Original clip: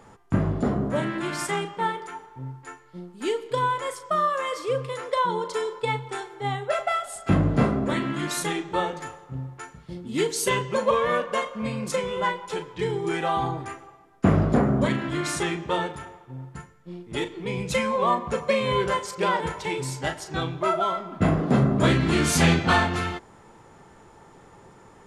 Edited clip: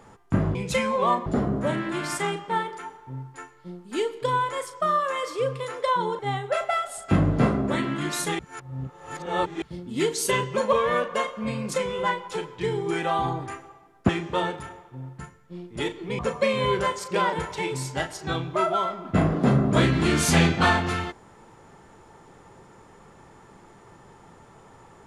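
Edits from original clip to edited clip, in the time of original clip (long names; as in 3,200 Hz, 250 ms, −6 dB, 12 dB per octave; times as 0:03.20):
0:05.48–0:06.37: remove
0:08.57–0:09.80: reverse
0:14.27–0:15.45: remove
0:17.55–0:18.26: move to 0:00.55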